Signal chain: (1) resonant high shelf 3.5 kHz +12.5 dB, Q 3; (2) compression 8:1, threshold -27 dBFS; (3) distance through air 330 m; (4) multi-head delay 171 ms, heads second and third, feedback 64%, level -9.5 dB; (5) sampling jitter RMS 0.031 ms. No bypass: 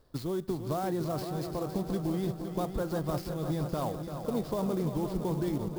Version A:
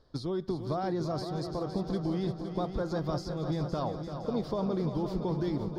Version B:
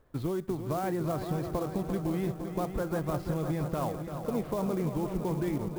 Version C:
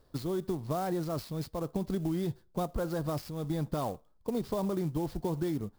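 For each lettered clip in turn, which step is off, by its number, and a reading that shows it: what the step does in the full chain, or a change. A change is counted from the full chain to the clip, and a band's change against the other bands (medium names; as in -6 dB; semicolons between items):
5, 8 kHz band -7.0 dB; 1, 4 kHz band -4.5 dB; 4, loudness change -1.0 LU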